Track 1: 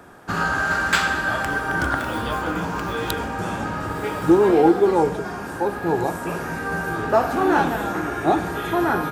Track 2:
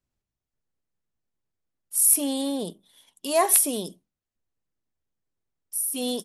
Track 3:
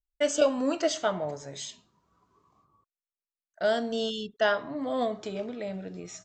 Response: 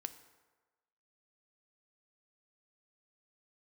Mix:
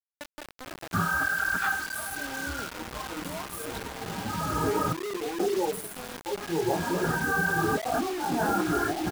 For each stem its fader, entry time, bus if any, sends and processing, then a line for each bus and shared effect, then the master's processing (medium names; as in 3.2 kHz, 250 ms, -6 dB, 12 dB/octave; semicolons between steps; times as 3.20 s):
+1.0 dB, 0.65 s, no bus, no send, spectral contrast enhancement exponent 1.9; detune thickener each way 43 cents; auto duck -14 dB, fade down 0.35 s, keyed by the second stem
-7.0 dB, 0.00 s, bus A, no send, hum notches 50/100/150/200/250 Hz
-12.5 dB, 0.00 s, bus A, no send, peak limiter -21 dBFS, peak gain reduction 9.5 dB
bus A: 0.0 dB, resonant high shelf 1.9 kHz -7 dB, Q 1.5; compression 10:1, threshold -42 dBFS, peak gain reduction 20 dB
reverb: none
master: compressor with a negative ratio -28 dBFS, ratio -1; bit crusher 6-bit